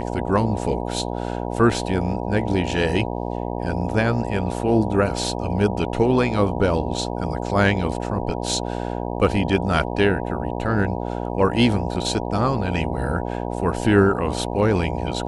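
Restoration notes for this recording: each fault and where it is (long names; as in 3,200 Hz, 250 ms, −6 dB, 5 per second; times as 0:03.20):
mains buzz 60 Hz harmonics 16 −27 dBFS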